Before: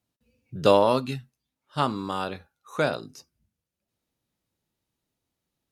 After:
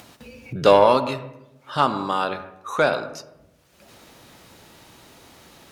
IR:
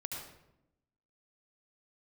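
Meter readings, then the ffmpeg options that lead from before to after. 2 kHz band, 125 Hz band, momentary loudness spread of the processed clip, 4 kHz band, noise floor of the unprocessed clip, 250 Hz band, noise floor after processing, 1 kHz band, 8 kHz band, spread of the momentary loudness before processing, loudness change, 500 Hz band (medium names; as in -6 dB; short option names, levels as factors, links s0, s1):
+7.0 dB, +0.5 dB, 18 LU, +4.0 dB, under -85 dBFS, +1.5 dB, -58 dBFS, +6.5 dB, +5.0 dB, 18 LU, +4.5 dB, +5.0 dB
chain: -filter_complex "[0:a]asplit=2[s0][s1];[s1]highpass=f=720:p=1,volume=3.98,asoftclip=type=tanh:threshold=0.668[s2];[s0][s2]amix=inputs=2:normalize=0,lowpass=f=4400:p=1,volume=0.501,acompressor=mode=upward:threshold=0.0501:ratio=2.5,asplit=2[s3][s4];[1:a]atrim=start_sample=2205,lowpass=2000[s5];[s4][s5]afir=irnorm=-1:irlink=0,volume=0.473[s6];[s3][s6]amix=inputs=2:normalize=0"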